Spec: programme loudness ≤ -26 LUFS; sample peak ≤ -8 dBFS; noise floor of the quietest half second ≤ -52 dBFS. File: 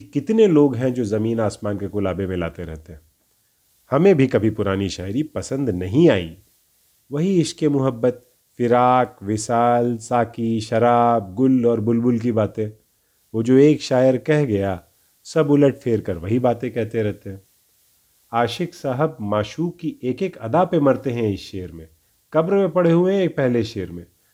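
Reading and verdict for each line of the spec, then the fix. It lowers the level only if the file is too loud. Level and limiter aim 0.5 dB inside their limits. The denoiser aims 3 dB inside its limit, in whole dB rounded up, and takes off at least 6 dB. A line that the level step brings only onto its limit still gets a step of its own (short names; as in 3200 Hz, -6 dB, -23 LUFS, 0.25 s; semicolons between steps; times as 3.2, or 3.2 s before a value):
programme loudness -19.5 LUFS: fail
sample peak -3.5 dBFS: fail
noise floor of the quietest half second -64 dBFS: OK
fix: gain -7 dB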